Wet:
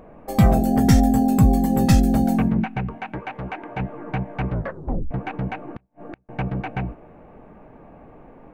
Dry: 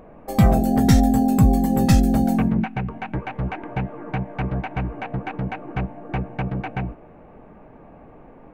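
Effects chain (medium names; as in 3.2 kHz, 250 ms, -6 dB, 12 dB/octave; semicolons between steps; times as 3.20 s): 0.66–1.24 s: band-stop 3.9 kHz, Q 7.8; 2.95–3.80 s: bass shelf 180 Hz -11 dB; 4.51 s: tape stop 0.60 s; 5.67–6.29 s: inverted gate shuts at -22 dBFS, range -40 dB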